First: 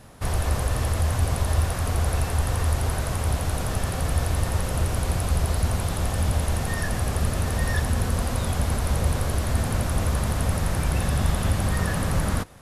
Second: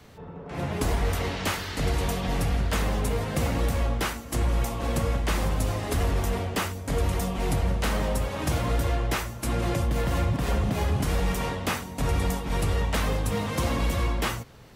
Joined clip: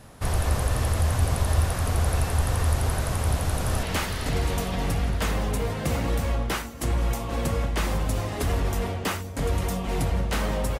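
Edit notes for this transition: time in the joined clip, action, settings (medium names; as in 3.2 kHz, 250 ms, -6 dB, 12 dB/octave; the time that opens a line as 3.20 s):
first
3.19–3.83 s: echo throw 460 ms, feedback 55%, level -6.5 dB
3.83 s: go over to second from 1.34 s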